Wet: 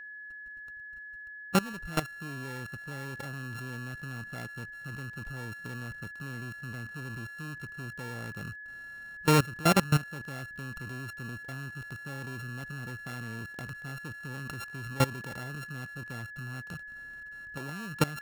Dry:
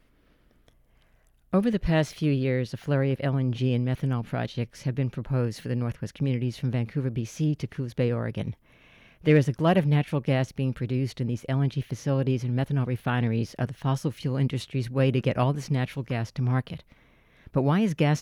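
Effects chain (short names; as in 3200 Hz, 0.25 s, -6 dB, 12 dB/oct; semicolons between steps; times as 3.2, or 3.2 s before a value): sample sorter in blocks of 32 samples; level quantiser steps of 20 dB; whine 1700 Hz -42 dBFS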